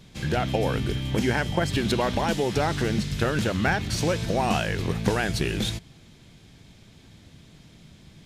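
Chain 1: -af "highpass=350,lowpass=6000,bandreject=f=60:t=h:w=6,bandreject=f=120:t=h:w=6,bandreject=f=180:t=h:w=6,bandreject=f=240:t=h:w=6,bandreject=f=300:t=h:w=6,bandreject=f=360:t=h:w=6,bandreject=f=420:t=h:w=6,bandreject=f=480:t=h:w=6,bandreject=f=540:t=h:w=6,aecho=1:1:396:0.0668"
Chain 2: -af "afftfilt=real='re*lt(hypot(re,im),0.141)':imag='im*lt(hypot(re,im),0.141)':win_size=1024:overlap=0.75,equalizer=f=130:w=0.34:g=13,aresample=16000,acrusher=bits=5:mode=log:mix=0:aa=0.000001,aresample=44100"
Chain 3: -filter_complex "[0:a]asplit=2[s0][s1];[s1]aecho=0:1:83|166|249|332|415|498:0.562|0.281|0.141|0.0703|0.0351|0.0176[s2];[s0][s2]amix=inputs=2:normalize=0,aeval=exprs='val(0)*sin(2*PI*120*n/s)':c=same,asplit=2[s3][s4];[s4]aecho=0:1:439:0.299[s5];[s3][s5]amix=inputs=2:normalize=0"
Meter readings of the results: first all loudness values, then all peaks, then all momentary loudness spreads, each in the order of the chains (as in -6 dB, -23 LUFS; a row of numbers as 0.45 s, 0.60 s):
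-28.5 LUFS, -31.0 LUFS, -27.5 LUFS; -10.0 dBFS, -14.0 dBFS, -10.5 dBFS; 5 LU, 12 LU, 5 LU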